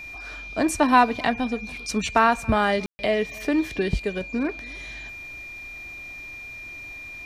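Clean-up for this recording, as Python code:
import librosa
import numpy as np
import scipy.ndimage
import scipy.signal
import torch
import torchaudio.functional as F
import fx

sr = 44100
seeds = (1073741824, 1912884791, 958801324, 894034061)

y = fx.notch(x, sr, hz=2400.0, q=30.0)
y = fx.fix_ambience(y, sr, seeds[0], print_start_s=6.12, print_end_s=6.62, start_s=2.86, end_s=2.99)
y = fx.fix_echo_inverse(y, sr, delay_ms=277, level_db=-24.0)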